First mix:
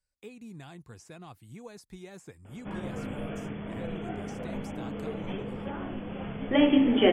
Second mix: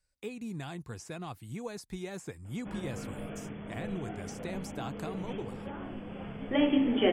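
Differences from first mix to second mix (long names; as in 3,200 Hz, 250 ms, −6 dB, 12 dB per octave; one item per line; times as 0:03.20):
speech +6.0 dB
background −4.5 dB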